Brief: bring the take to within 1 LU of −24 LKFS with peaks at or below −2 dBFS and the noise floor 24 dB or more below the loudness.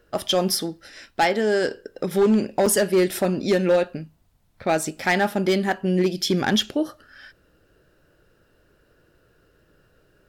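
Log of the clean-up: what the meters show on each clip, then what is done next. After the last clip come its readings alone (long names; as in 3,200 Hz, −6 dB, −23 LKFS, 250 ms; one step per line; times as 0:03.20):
share of clipped samples 1.1%; peaks flattened at −13.0 dBFS; number of dropouts 1; longest dropout 4.8 ms; integrated loudness −22.0 LKFS; sample peak −13.0 dBFS; target loudness −24.0 LKFS
→ clipped peaks rebuilt −13 dBFS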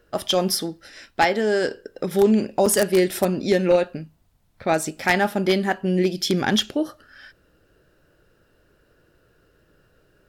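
share of clipped samples 0.0%; number of dropouts 1; longest dropout 4.8 ms
→ repair the gap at 0:02.66, 4.8 ms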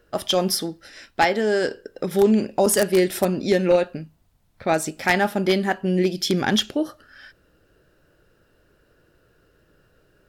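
number of dropouts 0; integrated loudness −21.5 LKFS; sample peak −4.0 dBFS; target loudness −24.0 LKFS
→ level −2.5 dB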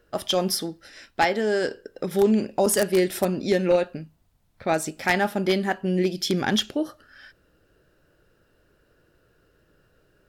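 integrated loudness −24.0 LKFS; sample peak −6.5 dBFS; background noise floor −65 dBFS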